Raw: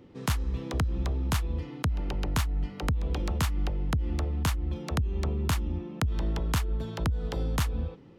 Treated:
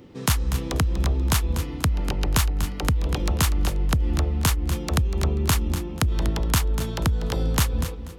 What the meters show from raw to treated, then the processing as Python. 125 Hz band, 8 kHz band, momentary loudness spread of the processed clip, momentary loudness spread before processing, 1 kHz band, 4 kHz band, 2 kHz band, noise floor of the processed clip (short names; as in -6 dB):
+6.0 dB, +11.5 dB, 3 LU, 3 LU, +6.0 dB, +9.0 dB, +7.0 dB, -34 dBFS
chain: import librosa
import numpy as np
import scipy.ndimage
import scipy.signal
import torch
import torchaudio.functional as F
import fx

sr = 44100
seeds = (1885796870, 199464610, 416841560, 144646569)

y = fx.high_shelf(x, sr, hz=4800.0, db=8.0)
y = fx.echo_feedback(y, sr, ms=243, feedback_pct=23, wet_db=-11)
y = F.gain(torch.from_numpy(y), 5.5).numpy()